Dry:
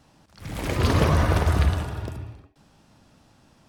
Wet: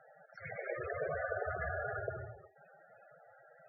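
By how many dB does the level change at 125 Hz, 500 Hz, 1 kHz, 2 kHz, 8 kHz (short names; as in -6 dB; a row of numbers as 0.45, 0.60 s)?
-25.5 dB, -8.5 dB, -13.0 dB, -7.0 dB, under -40 dB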